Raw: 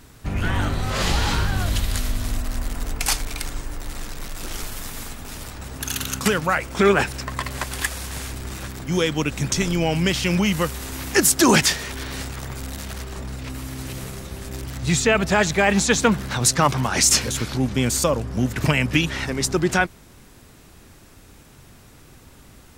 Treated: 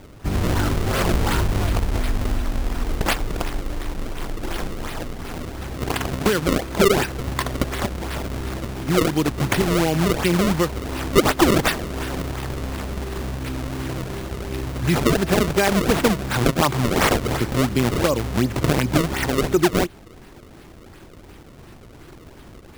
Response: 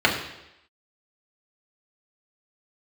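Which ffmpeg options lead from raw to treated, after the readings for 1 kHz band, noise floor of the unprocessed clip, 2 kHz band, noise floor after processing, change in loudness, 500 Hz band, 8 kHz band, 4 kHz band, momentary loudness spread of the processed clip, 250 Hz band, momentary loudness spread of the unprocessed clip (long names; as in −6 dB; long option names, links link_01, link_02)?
+1.0 dB, −48 dBFS, −2.0 dB, −44 dBFS, −0.5 dB, +2.5 dB, −8.0 dB, −2.5 dB, 11 LU, +2.0 dB, 15 LU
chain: -af "equalizer=frequency=350:width_type=o:width=0.39:gain=7.5,acompressor=threshold=-21dB:ratio=2,acrusher=samples=31:mix=1:aa=0.000001:lfo=1:lforange=49.6:lforate=2.8,volume=3.5dB"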